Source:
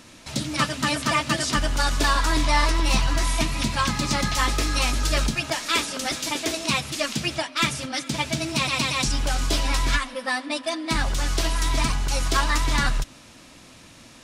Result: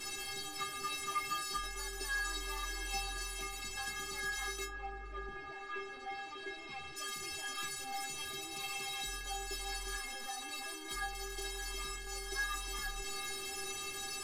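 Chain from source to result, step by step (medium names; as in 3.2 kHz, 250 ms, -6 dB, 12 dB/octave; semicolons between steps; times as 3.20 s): one-bit delta coder 64 kbps, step -18.5 dBFS; 4.64–6.95 s: low-pass 1.2 kHz -> 2.9 kHz 12 dB/octave; inharmonic resonator 390 Hz, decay 0.44 s, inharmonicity 0.008; trim +1 dB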